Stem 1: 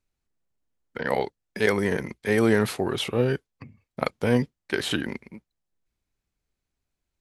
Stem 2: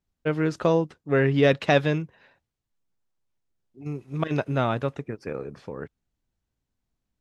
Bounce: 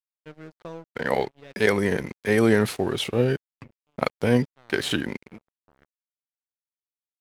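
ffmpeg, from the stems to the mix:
-filter_complex "[0:a]volume=1.26,asplit=2[s0][s1];[1:a]volume=0.168[s2];[s1]apad=whole_len=317875[s3];[s2][s3]sidechaincompress=threshold=0.0355:ratio=3:attack=12:release=897[s4];[s0][s4]amix=inputs=2:normalize=0,adynamicequalizer=threshold=0.01:dfrequency=1100:dqfactor=1.3:tfrequency=1100:tqfactor=1.3:attack=5:release=100:ratio=0.375:range=2:mode=cutabove:tftype=bell,aeval=exprs='sgn(val(0))*max(abs(val(0))-0.00562,0)':c=same"

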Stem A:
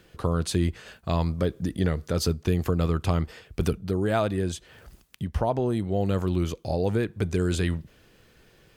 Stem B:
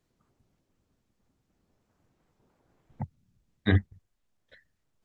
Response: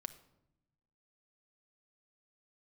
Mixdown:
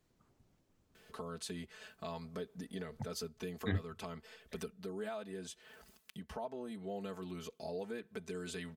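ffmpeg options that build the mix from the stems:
-filter_complex "[0:a]highpass=f=360:p=1,aecho=1:1:4.6:1,alimiter=limit=0.168:level=0:latency=1:release=419,adelay=950,volume=0.473[s0];[1:a]volume=1.06[s1];[s0][s1]amix=inputs=2:normalize=0,acompressor=threshold=0.00178:ratio=1.5"

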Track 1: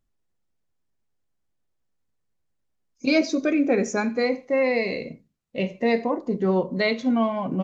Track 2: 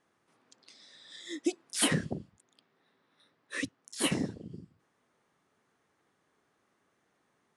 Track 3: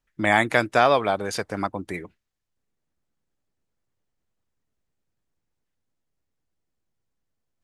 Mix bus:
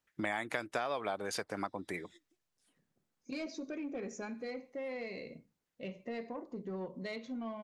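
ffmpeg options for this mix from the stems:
-filter_complex "[0:a]asoftclip=type=tanh:threshold=0.188,adelay=250,volume=0.211[s0];[1:a]acompressor=threshold=0.0126:ratio=2.5,adelay=850,volume=0.15[s1];[2:a]highpass=f=220:p=1,acompressor=threshold=0.112:ratio=6,volume=0.944,asplit=2[s2][s3];[s3]apad=whole_len=371201[s4];[s1][s4]sidechaingate=range=0.0708:threshold=0.00251:ratio=16:detection=peak[s5];[s0][s5][s2]amix=inputs=3:normalize=0,acompressor=threshold=0.00891:ratio=2"

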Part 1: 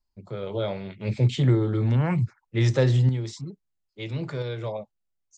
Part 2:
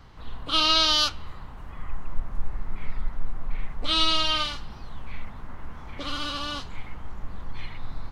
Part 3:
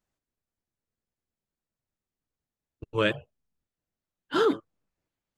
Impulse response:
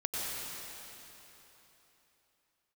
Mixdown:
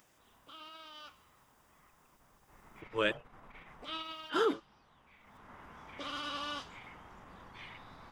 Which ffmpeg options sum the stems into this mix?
-filter_complex "[1:a]acrossover=split=3000[s0][s1];[s1]acompressor=threshold=0.0112:ratio=4:attack=1:release=60[s2];[s0][s2]amix=inputs=2:normalize=0,alimiter=limit=0.0794:level=0:latency=1:release=17,flanger=delay=7:depth=6.9:regen=-84:speed=1.3:shape=triangular,volume=2.99,afade=t=in:st=2.41:d=0.45:silence=0.266073,afade=t=out:st=3.91:d=0.4:silence=0.316228,afade=t=in:st=5.2:d=0.36:silence=0.251189[s3];[2:a]acompressor=mode=upward:threshold=0.00794:ratio=2.5,volume=0.596[s4];[s3][s4]amix=inputs=2:normalize=0,highpass=f=360:p=1,bandreject=f=4200:w=7"

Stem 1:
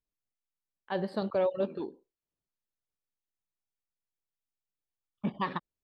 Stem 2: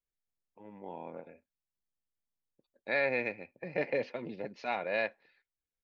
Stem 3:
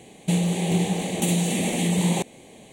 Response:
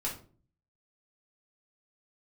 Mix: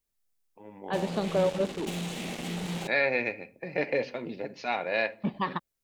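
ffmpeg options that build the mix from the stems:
-filter_complex "[0:a]volume=1.26[s0];[1:a]highshelf=f=5100:g=9,volume=1.26,asplit=3[s1][s2][s3];[s2]volume=0.237[s4];[2:a]lowpass=3800,highshelf=f=2600:g=7,acrusher=bits=3:mix=0:aa=0.5,adelay=650,volume=0.224,asplit=2[s5][s6];[s6]volume=0.112[s7];[s3]apad=whole_len=148639[s8];[s5][s8]sidechaincompress=threshold=0.0141:ratio=8:attack=37:release=718[s9];[3:a]atrim=start_sample=2205[s10];[s4][s7]amix=inputs=2:normalize=0[s11];[s11][s10]afir=irnorm=-1:irlink=0[s12];[s0][s1][s9][s12]amix=inputs=4:normalize=0"

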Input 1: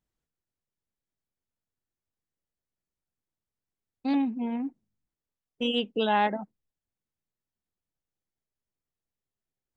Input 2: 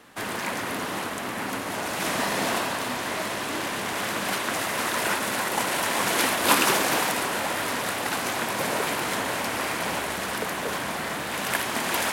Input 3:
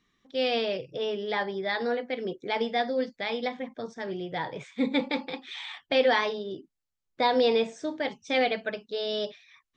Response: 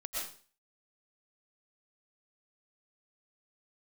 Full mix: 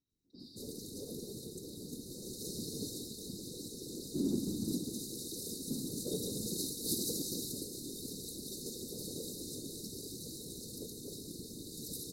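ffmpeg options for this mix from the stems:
-filter_complex "[0:a]adelay=100,volume=0.75,asplit=2[s0][s1];[s1]volume=0.335[s2];[1:a]adelay=400,volume=0.335[s3];[2:a]bandreject=f=370:w=12,volume=0.178[s4];[s0][s4]amix=inputs=2:normalize=0,acompressor=threshold=0.0158:ratio=6,volume=1[s5];[3:a]atrim=start_sample=2205[s6];[s2][s6]afir=irnorm=-1:irlink=0[s7];[s3][s5][s7]amix=inputs=3:normalize=0,afftfilt=real='re*(1-between(b*sr/4096,450,3700))':imag='im*(1-between(b*sr/4096,450,3700))':win_size=4096:overlap=0.75,acontrast=21,afftfilt=real='hypot(re,im)*cos(2*PI*random(0))':imag='hypot(re,im)*sin(2*PI*random(1))':win_size=512:overlap=0.75"

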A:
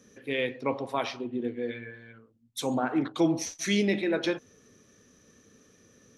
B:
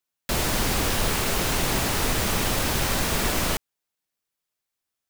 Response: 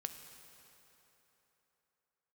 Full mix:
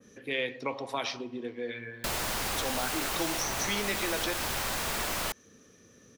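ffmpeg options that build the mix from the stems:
-filter_complex "[0:a]adynamicequalizer=threshold=0.00398:dfrequency=5500:dqfactor=0.9:tfrequency=5500:tqfactor=0.9:attack=5:release=100:ratio=0.375:range=3:mode=boostabove:tftype=bell,volume=1.06,asplit=2[s0][s1];[s1]volume=0.126[s2];[1:a]adelay=1750,volume=0.631[s3];[2:a]atrim=start_sample=2205[s4];[s2][s4]afir=irnorm=-1:irlink=0[s5];[s0][s3][s5]amix=inputs=3:normalize=0,acrossover=split=540|1900[s6][s7][s8];[s6]acompressor=threshold=0.0112:ratio=4[s9];[s7]acompressor=threshold=0.0224:ratio=4[s10];[s8]acompressor=threshold=0.0251:ratio=4[s11];[s9][s10][s11]amix=inputs=3:normalize=0"

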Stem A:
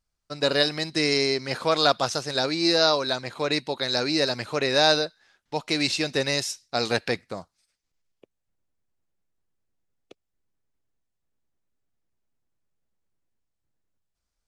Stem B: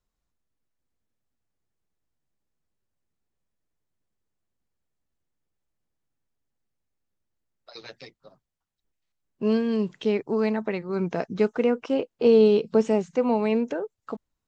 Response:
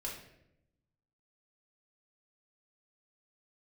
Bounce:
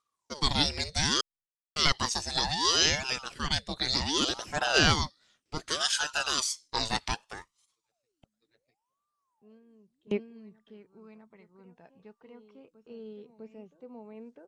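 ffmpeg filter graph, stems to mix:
-filter_complex "[0:a]lowpass=f=9600:w=0.5412,lowpass=f=9600:w=1.3066,highshelf=f=4500:g=11.5,aeval=exprs='val(0)*sin(2*PI*700*n/s+700*0.7/0.66*sin(2*PI*0.66*n/s))':c=same,volume=0.562,asplit=3[s0][s1][s2];[s0]atrim=end=1.21,asetpts=PTS-STARTPTS,afade=t=out:st=1.206:d=0.004:c=hsin[s3];[s1]atrim=start=1.21:end=1.76,asetpts=PTS-STARTPTS,volume=0[s4];[s2]atrim=start=1.76,asetpts=PTS-STARTPTS,afade=t=in:d=0.004:c=hsin[s5];[s3][s4][s5]concat=n=3:v=0:a=1,asplit=2[s6][s7];[1:a]lowpass=4300,agate=range=0.112:threshold=0.00794:ratio=16:detection=peak,volume=0.473,asplit=2[s8][s9];[s9]volume=0.0891[s10];[s7]apad=whole_len=638376[s11];[s8][s11]sidechaingate=range=0.0224:threshold=0.001:ratio=16:detection=peak[s12];[s10]aecho=0:1:652:1[s13];[s6][s12][s13]amix=inputs=3:normalize=0,aphaser=in_gain=1:out_gain=1:delay=1.2:decay=0.44:speed=0.21:type=triangular"

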